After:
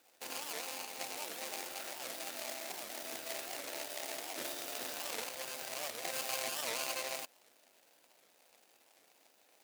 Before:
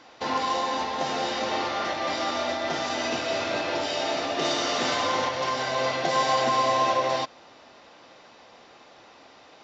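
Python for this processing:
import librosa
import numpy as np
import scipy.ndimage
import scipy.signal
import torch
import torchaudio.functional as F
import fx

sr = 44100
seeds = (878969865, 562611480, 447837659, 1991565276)

y = scipy.ndimage.median_filter(x, 41, mode='constant')
y = np.diff(y, prepend=0.0)
y = fx.record_warp(y, sr, rpm=78.0, depth_cents=250.0)
y = y * 10.0 ** (7.5 / 20.0)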